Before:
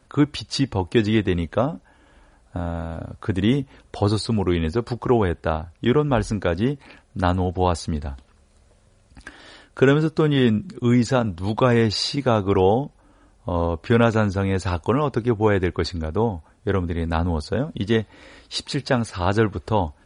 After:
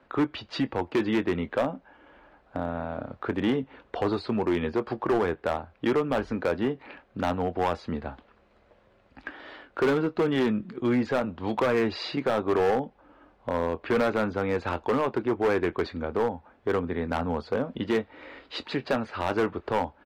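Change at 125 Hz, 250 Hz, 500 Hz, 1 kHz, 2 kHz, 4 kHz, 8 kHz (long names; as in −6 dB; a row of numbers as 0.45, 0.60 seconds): −13.5 dB, −6.0 dB, −4.0 dB, −4.0 dB, −4.0 dB, −9.0 dB, below −10 dB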